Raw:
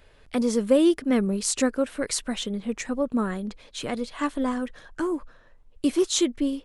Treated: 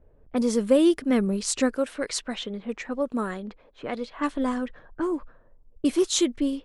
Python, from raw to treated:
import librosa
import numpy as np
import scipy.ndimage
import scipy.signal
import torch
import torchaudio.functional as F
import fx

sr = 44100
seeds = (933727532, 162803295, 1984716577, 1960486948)

y = fx.env_lowpass(x, sr, base_hz=500.0, full_db=-21.0)
y = fx.bass_treble(y, sr, bass_db=-7, treble_db=2, at=(1.75, 4.17))